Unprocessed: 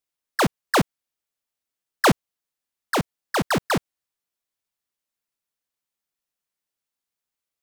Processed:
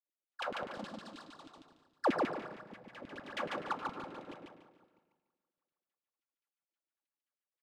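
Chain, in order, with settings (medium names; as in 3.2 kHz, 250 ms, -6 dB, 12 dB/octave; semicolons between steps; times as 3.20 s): backward echo that repeats 161 ms, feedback 52%, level -7 dB; de-hum 52.12 Hz, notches 13; tremolo triangle 3.6 Hz, depth 60%; level held to a coarse grid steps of 22 dB; peak limiter -24.5 dBFS, peak gain reduction 8.5 dB; reverberation RT60 0.75 s, pre-delay 3 ms, DRR 1.5 dB; LFO band-pass saw down 9.5 Hz 250–3200 Hz; 0.75–2.05 s: graphic EQ 125/500/2000/4000/8000 Hz -6/-8/-10/+9/+8 dB; feedback delay 145 ms, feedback 29%, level -3 dB; trim +1.5 dB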